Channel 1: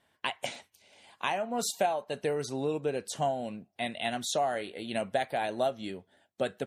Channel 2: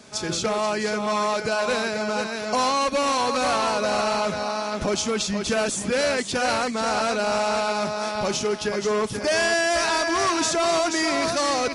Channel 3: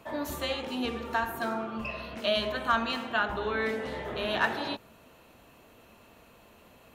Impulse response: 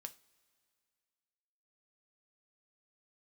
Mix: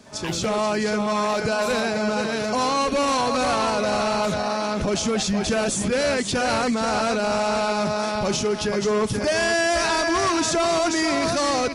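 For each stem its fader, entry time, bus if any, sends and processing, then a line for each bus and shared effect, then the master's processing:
0.0 dB, 0.00 s, no send, no processing
−4.0 dB, 0.00 s, no send, low-shelf EQ 270 Hz +7.5 dB; automatic gain control gain up to 10.5 dB
−11.5 dB, 0.00 s, no send, no processing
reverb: not used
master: brickwall limiter −15.5 dBFS, peak gain reduction 8.5 dB

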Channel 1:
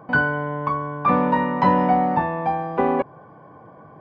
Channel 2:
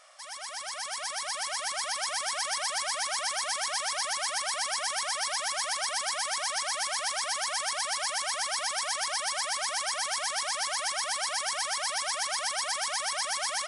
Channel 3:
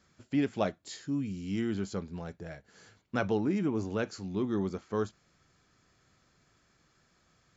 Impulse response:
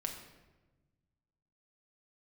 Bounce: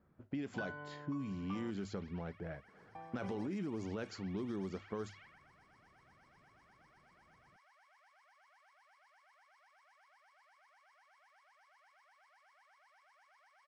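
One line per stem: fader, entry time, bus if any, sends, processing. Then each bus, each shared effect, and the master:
−18.0 dB, 0.45 s, muted 0:01.71–0:02.95, no bus, no send, high-shelf EQ 2,600 Hz +11.5 dB; automatic ducking −9 dB, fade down 1.30 s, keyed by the third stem
−18.0 dB, 1.00 s, bus A, send −16.5 dB, resonant band-pass 2,300 Hz, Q 2.2
−1.0 dB, 0.00 s, bus A, no send, mains-hum notches 50/100 Hz
bus A: 0.0 dB, low-pass that shuts in the quiet parts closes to 930 Hz, open at −27.5 dBFS; brickwall limiter −26 dBFS, peak gain reduction 10.5 dB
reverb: on, RT60 1.2 s, pre-delay 5 ms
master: downward compressor 5 to 1, threshold −37 dBFS, peak gain reduction 7 dB

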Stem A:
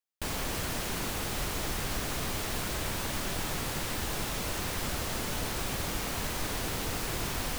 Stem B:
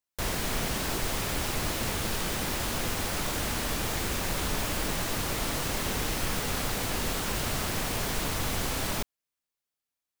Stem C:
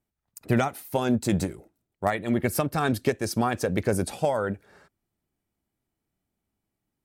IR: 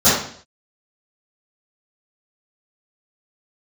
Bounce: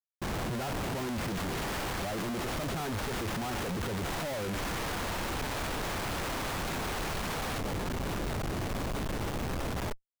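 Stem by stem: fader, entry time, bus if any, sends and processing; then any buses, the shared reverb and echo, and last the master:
−8.5 dB, 0.00 s, no send, Butterworth high-pass 700 Hz 36 dB per octave
−9.5 dB, 0.90 s, no send, low-shelf EQ 340 Hz −6.5 dB; brickwall limiter −24.5 dBFS, peak gain reduction 6 dB
−2.5 dB, 0.00 s, no send, low-pass filter 1,500 Hz 24 dB per octave; tremolo along a rectified sine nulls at 1.8 Hz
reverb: not used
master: comparator with hysteresis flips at −39.5 dBFS; low-shelf EQ 200 Hz +4 dB

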